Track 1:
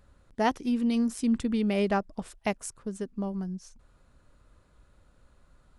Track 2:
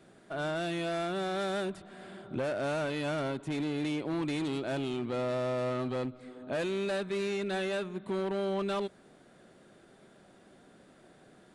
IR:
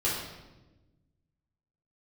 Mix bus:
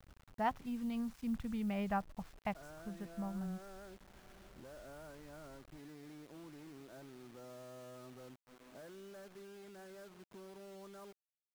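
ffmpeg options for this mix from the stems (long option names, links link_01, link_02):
-filter_complex "[0:a]firequalizer=gain_entry='entry(150,0);entry(320,-19);entry(750,-3);entry(8500,-29)':delay=0.05:min_phase=1,volume=-3.5dB[link_01];[1:a]lowpass=frequency=1600:width=0.5412,lowpass=frequency=1600:width=1.3066,acompressor=threshold=-42dB:ratio=2,crystalizer=i=3.5:c=0,adelay=2250,volume=-15dB[link_02];[link_01][link_02]amix=inputs=2:normalize=0,acrusher=bits=9:mix=0:aa=0.000001"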